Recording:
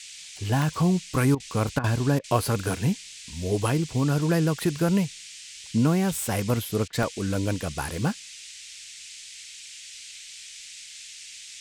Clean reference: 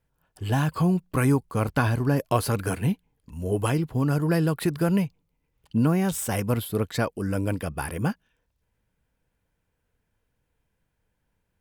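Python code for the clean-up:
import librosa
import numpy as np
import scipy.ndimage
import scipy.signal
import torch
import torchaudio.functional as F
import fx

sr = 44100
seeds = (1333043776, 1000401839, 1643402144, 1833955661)

y = fx.fix_interpolate(x, sr, at_s=(0.62, 1.14, 3.04, 6.5, 7.03), length_ms=1.4)
y = fx.fix_interpolate(y, sr, at_s=(1.35, 1.79, 2.19, 6.88), length_ms=48.0)
y = fx.noise_reduce(y, sr, print_start_s=8.51, print_end_s=9.01, reduce_db=30.0)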